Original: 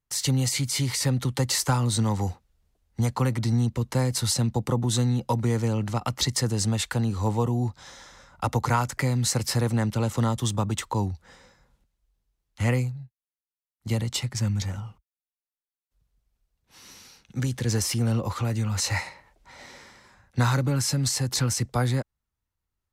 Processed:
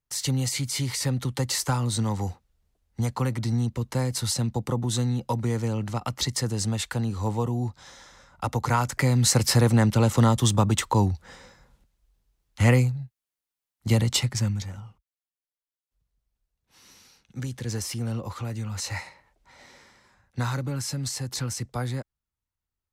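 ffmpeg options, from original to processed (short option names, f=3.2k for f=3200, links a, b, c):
-af "volume=5dB,afade=t=in:st=8.57:d=0.83:silence=0.446684,afade=t=out:st=14.17:d=0.48:silence=0.298538"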